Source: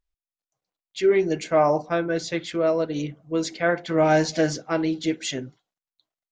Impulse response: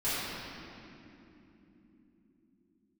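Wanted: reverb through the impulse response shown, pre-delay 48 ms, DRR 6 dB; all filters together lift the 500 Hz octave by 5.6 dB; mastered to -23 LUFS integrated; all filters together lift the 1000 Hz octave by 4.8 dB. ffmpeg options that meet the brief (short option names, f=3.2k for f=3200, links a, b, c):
-filter_complex "[0:a]equalizer=f=500:t=o:g=6,equalizer=f=1k:t=o:g=4,asplit=2[a][b];[1:a]atrim=start_sample=2205,adelay=48[c];[b][c]afir=irnorm=-1:irlink=0,volume=-16dB[d];[a][d]amix=inputs=2:normalize=0,volume=-5dB"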